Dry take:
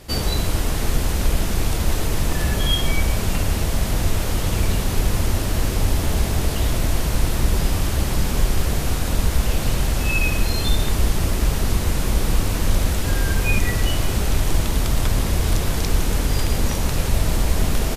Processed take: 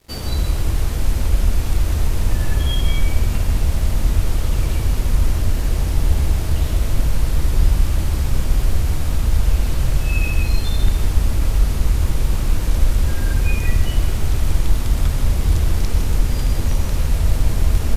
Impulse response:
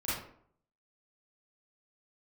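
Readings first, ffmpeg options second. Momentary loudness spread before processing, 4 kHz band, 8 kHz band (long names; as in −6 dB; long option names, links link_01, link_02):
2 LU, −5.0 dB, −5.0 dB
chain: -filter_complex "[0:a]aeval=exprs='sgn(val(0))*max(abs(val(0))-0.00631,0)':channel_layout=same,asplit=2[link_01][link_02];[1:a]atrim=start_sample=2205,lowshelf=frequency=100:gain=10.5,adelay=90[link_03];[link_02][link_03]afir=irnorm=-1:irlink=0,volume=-9dB[link_04];[link_01][link_04]amix=inputs=2:normalize=0,volume=-5.5dB"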